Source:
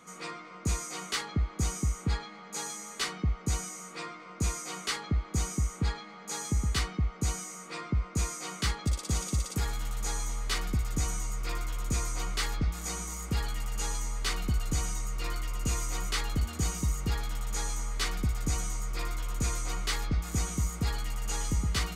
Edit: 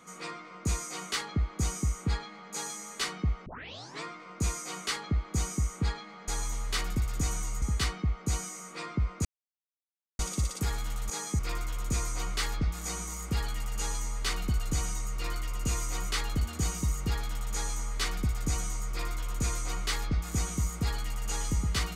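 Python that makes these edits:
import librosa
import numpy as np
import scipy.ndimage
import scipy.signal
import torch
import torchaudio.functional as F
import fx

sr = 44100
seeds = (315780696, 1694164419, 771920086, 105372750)

y = fx.edit(x, sr, fx.tape_start(start_s=3.46, length_s=0.57),
    fx.swap(start_s=6.28, length_s=0.29, other_s=10.05, other_length_s=1.34),
    fx.silence(start_s=8.2, length_s=0.94), tone=tone)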